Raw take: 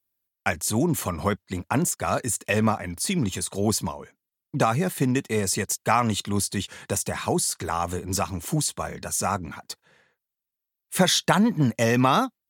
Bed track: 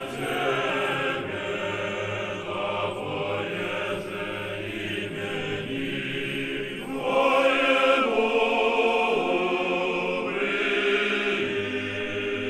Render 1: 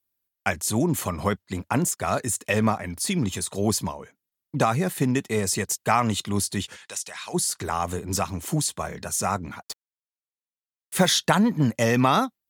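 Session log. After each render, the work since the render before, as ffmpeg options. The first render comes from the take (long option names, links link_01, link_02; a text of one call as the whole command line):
ffmpeg -i in.wav -filter_complex "[0:a]asplit=3[link_01][link_02][link_03];[link_01]afade=type=out:start_time=6.75:duration=0.02[link_04];[link_02]bandpass=frequency=4100:width_type=q:width=0.69,afade=type=in:start_time=6.75:duration=0.02,afade=type=out:start_time=7.33:duration=0.02[link_05];[link_03]afade=type=in:start_time=7.33:duration=0.02[link_06];[link_04][link_05][link_06]amix=inputs=3:normalize=0,asplit=3[link_07][link_08][link_09];[link_07]afade=type=out:start_time=9.61:duration=0.02[link_10];[link_08]acrusher=bits=5:mix=0:aa=0.5,afade=type=in:start_time=9.61:duration=0.02,afade=type=out:start_time=11.12:duration=0.02[link_11];[link_09]afade=type=in:start_time=11.12:duration=0.02[link_12];[link_10][link_11][link_12]amix=inputs=3:normalize=0" out.wav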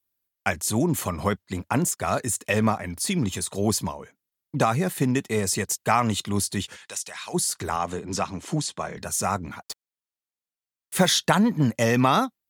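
ffmpeg -i in.wav -filter_complex "[0:a]asettb=1/sr,asplit=3[link_01][link_02][link_03];[link_01]atrim=end=7.764[link_04];[link_02]atrim=start=7.76:end=8.97,asetpts=PTS-STARTPTS,afade=type=in:duration=0.004:curve=qsin,afade=type=out:start_time=1.206:duration=0.004:curve=qsin,highpass=130,lowpass=6400[link_05];[link_03]atrim=start=8.966[link_06];[link_04][link_05]acrossfade=duration=0.004:curve1=hsin:curve2=qsin[link_07];[link_07][link_06]acrossfade=duration=0.004:curve1=qsin:curve2=hsin" out.wav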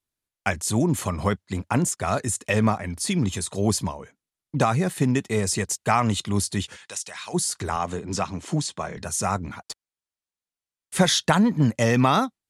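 ffmpeg -i in.wav -af "lowpass=frequency=11000:width=0.5412,lowpass=frequency=11000:width=1.3066,lowshelf=frequency=100:gain=7" out.wav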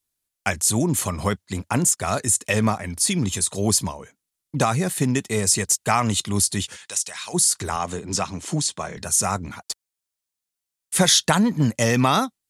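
ffmpeg -i in.wav -af "highshelf=frequency=4500:gain=10.5" out.wav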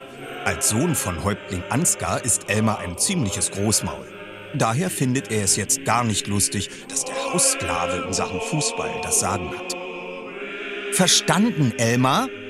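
ffmpeg -i in.wav -i bed.wav -filter_complex "[1:a]volume=-6dB[link_01];[0:a][link_01]amix=inputs=2:normalize=0" out.wav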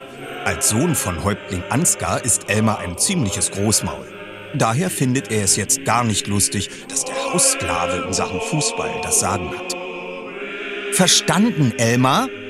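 ffmpeg -i in.wav -af "volume=3dB,alimiter=limit=-2dB:level=0:latency=1" out.wav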